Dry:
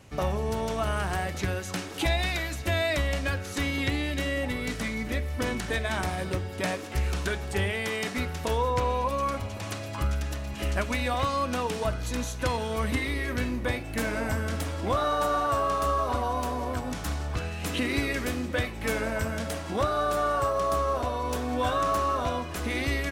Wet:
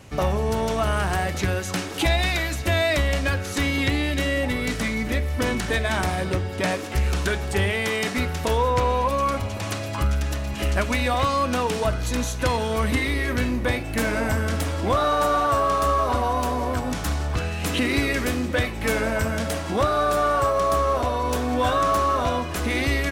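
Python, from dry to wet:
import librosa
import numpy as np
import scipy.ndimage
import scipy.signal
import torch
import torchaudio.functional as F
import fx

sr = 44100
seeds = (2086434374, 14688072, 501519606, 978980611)

p1 = fx.high_shelf(x, sr, hz=9200.0, db=-5.5, at=(6.19, 6.71))
p2 = np.clip(p1, -10.0 ** (-28.5 / 20.0), 10.0 ** (-28.5 / 20.0))
p3 = p1 + (p2 * librosa.db_to_amplitude(-8.0))
y = p3 * librosa.db_to_amplitude(3.5)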